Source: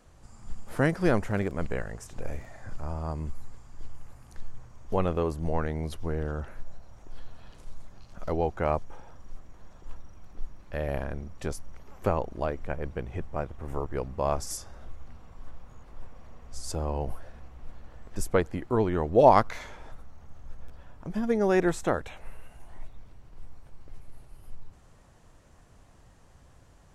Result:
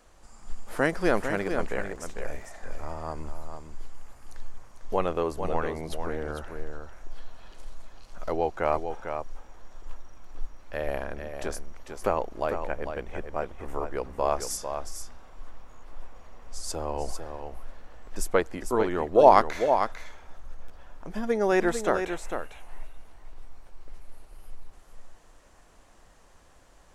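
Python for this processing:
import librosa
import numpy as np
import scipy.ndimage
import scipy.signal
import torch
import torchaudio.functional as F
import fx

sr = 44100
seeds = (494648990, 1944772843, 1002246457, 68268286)

y = fx.peak_eq(x, sr, hz=110.0, db=-14.5, octaves=1.9)
y = y + 10.0 ** (-7.5 / 20.0) * np.pad(y, (int(449 * sr / 1000.0), 0))[:len(y)]
y = y * 10.0 ** (3.0 / 20.0)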